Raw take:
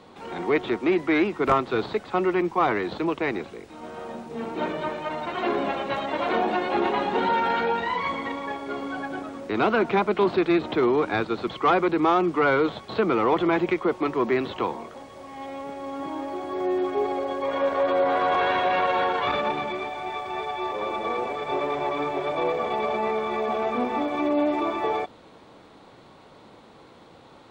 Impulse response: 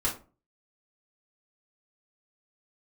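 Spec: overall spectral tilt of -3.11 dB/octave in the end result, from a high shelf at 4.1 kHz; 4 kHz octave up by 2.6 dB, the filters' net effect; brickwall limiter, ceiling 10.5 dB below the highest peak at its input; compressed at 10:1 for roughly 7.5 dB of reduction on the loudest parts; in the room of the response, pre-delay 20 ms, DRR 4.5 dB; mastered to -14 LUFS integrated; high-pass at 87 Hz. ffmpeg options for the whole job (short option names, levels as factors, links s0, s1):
-filter_complex "[0:a]highpass=87,equalizer=f=4000:t=o:g=6,highshelf=f=4100:g=-5.5,acompressor=threshold=0.0631:ratio=10,alimiter=level_in=1.19:limit=0.0631:level=0:latency=1,volume=0.841,asplit=2[s0][s1];[1:a]atrim=start_sample=2205,adelay=20[s2];[s1][s2]afir=irnorm=-1:irlink=0,volume=0.237[s3];[s0][s3]amix=inputs=2:normalize=0,volume=8.41"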